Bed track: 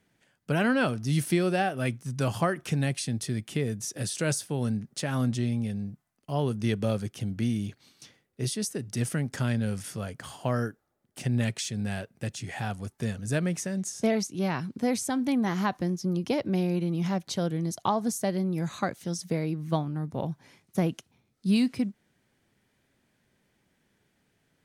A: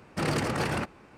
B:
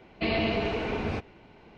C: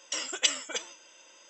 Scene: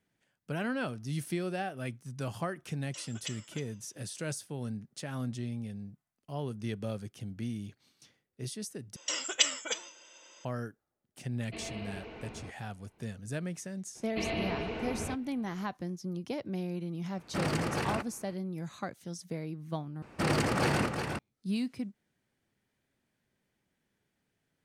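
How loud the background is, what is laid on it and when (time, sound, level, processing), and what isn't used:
bed track −9 dB
0:02.82: mix in C −15.5 dB
0:08.96: overwrite with C −0.5 dB
0:11.31: mix in B −15.5 dB
0:13.95: mix in B −7 dB
0:17.17: mix in A −4 dB
0:20.02: overwrite with A −0.5 dB + single-tap delay 360 ms −5.5 dB

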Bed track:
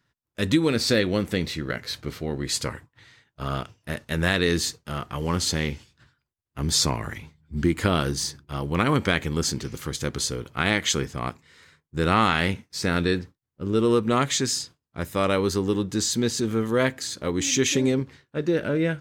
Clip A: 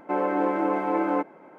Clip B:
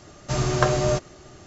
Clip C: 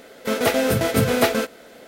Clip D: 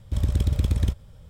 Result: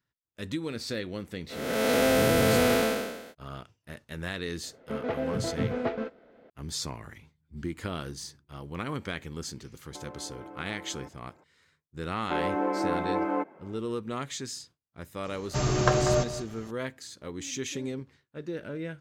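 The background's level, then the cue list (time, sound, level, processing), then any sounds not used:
bed track −12.5 dB
0:01.48: mix in C, fades 0.05 s + spectrum smeared in time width 391 ms
0:04.63: mix in C −8.5 dB + head-to-tape spacing loss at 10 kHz 44 dB
0:09.86: mix in A −12 dB + downward compressor, threshold −30 dBFS
0:12.21: mix in A −4 dB
0:15.25: mix in B −3 dB + single-tap delay 192 ms −12.5 dB
not used: D

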